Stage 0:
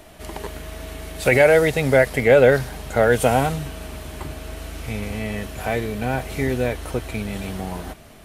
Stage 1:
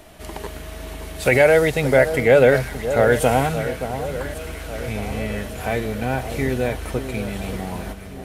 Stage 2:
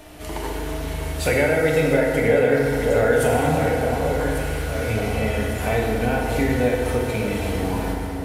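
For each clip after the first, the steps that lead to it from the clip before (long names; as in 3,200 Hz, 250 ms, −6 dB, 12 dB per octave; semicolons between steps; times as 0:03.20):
delay that swaps between a low-pass and a high-pass 574 ms, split 1,400 Hz, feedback 70%, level −10 dB
downward compressor 4 to 1, threshold −20 dBFS, peak gain reduction 10 dB; feedback delay network reverb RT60 2.2 s, low-frequency decay 0.85×, high-frequency decay 0.55×, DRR −2 dB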